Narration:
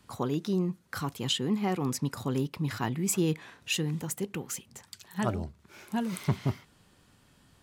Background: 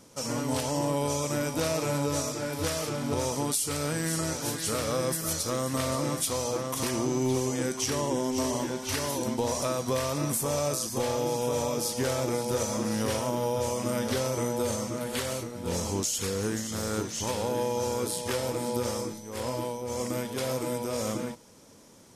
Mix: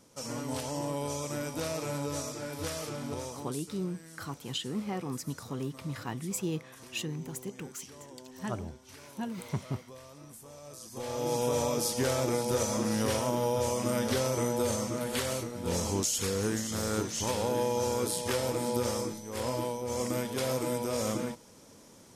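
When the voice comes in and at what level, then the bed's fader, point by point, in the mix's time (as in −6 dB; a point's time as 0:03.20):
3.25 s, −6.0 dB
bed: 0:03.04 −6 dB
0:03.86 −21 dB
0:10.62 −21 dB
0:11.34 −0.5 dB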